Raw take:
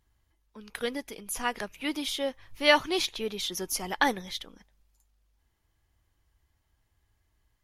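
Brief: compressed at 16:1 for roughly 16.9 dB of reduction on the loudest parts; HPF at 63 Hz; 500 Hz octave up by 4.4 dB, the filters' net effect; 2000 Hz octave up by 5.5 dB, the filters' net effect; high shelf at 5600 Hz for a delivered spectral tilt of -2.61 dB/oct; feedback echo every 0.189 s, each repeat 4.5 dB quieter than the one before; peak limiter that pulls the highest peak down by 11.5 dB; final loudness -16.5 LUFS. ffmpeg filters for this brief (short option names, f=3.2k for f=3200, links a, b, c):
-af "highpass=63,equalizer=f=500:t=o:g=5,equalizer=f=2k:t=o:g=5.5,highshelf=f=5.6k:g=6,acompressor=threshold=-27dB:ratio=16,alimiter=limit=-23.5dB:level=0:latency=1,aecho=1:1:189|378|567|756|945|1134|1323|1512|1701:0.596|0.357|0.214|0.129|0.0772|0.0463|0.0278|0.0167|0.01,volume=16.5dB"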